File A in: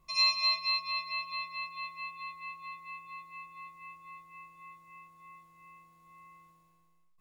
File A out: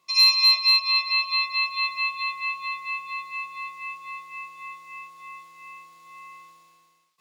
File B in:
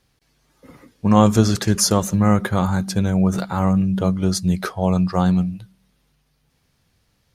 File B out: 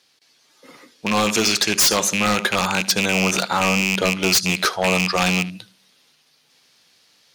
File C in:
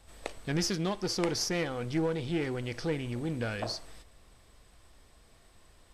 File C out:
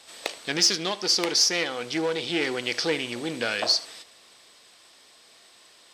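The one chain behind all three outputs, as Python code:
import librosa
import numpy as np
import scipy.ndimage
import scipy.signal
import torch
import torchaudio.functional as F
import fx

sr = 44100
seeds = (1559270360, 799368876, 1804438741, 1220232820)

p1 = fx.rattle_buzz(x, sr, strikes_db=-20.0, level_db=-16.0)
p2 = fx.peak_eq(p1, sr, hz=4300.0, db=11.0, octaves=2.1)
p3 = p2 + fx.echo_single(p2, sr, ms=76, db=-20.5, dry=0)
p4 = fx.rider(p3, sr, range_db=5, speed_s=2.0)
p5 = np.clip(10.0 ** (17.0 / 20.0) * p4, -1.0, 1.0) / 10.0 ** (17.0 / 20.0)
p6 = p4 + (p5 * librosa.db_to_amplitude(-6.5))
p7 = scipy.signal.sosfilt(scipy.signal.butter(2, 310.0, 'highpass', fs=sr, output='sos'), p6)
y = 10.0 ** (-10.0 / 20.0) * (np.abs((p7 / 10.0 ** (-10.0 / 20.0) + 3.0) % 4.0 - 2.0) - 1.0)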